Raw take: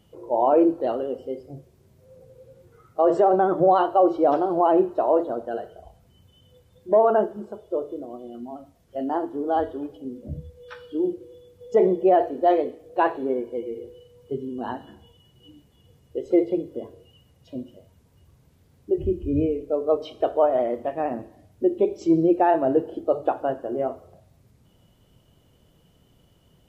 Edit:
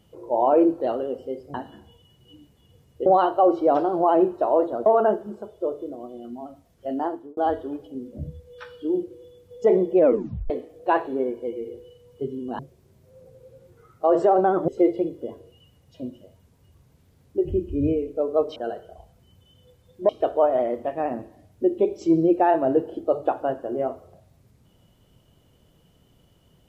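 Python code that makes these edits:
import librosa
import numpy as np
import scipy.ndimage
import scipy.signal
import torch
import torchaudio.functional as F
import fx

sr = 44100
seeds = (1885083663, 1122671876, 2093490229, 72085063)

y = fx.edit(x, sr, fx.swap(start_s=1.54, length_s=2.09, other_s=14.69, other_length_s=1.52),
    fx.move(start_s=5.43, length_s=1.53, to_s=20.09),
    fx.fade_out_span(start_s=9.11, length_s=0.36),
    fx.tape_stop(start_s=12.06, length_s=0.54), tone=tone)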